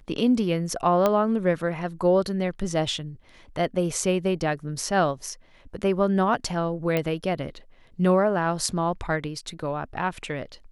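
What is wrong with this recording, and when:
0:01.06: click −9 dBFS
0:06.97: click −12 dBFS

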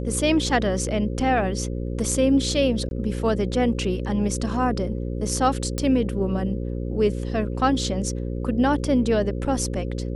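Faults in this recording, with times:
mains buzz 60 Hz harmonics 9 −28 dBFS
0:02.89–0:02.91: drop-out 21 ms
0:05.78: click −13 dBFS

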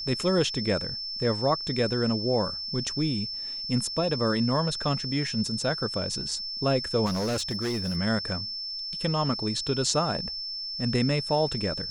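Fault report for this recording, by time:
whistle 5,300 Hz −32 dBFS
0:07.05–0:07.97: clipping −25 dBFS

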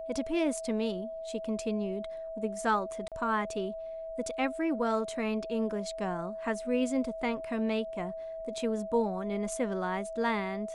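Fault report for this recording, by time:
whistle 650 Hz −37 dBFS
0:03.08–0:03.12: drop-out 37 ms

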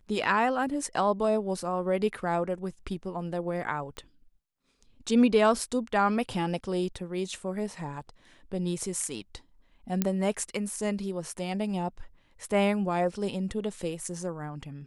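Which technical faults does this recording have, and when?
0:03.97: click −25 dBFS
0:10.02: click −11 dBFS

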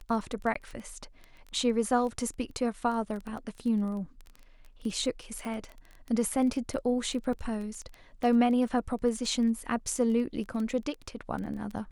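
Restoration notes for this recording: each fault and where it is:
surface crackle 15 per second −34 dBFS
0:00.54–0:00.55: drop-out 14 ms
0:05.45: click −26 dBFS
0:07.33: drop-out 2.4 ms

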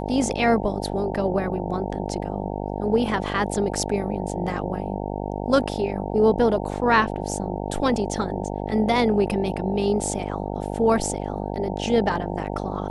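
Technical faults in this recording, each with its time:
mains buzz 50 Hz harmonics 18 −29 dBFS

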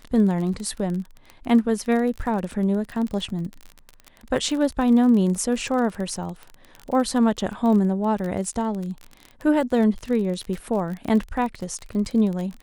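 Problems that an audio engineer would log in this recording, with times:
surface crackle 31 per second −28 dBFS

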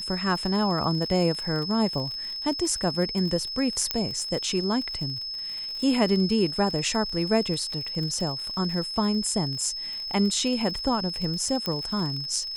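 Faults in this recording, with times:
surface crackle 58 per second −32 dBFS
whistle 5,200 Hz −31 dBFS
0:03.91: click −8 dBFS
0:11.66: click −14 dBFS

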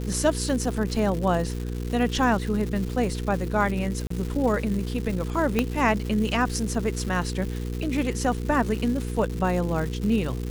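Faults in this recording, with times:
surface crackle 340 per second −31 dBFS
mains hum 60 Hz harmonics 8 −30 dBFS
0:04.07–0:04.10: drop-out 34 ms
0:05.59: click −8 dBFS

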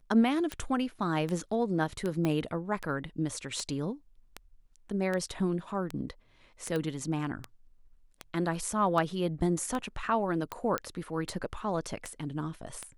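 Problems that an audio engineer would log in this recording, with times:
scratch tick 78 rpm −20 dBFS
0:02.25: click −17 dBFS
0:06.76: click −21 dBFS
0:10.78: click −15 dBFS

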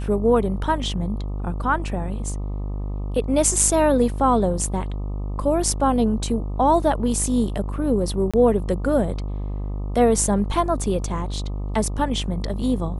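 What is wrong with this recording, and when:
mains buzz 50 Hz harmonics 25 −27 dBFS
0:08.31–0:08.34: drop-out 26 ms

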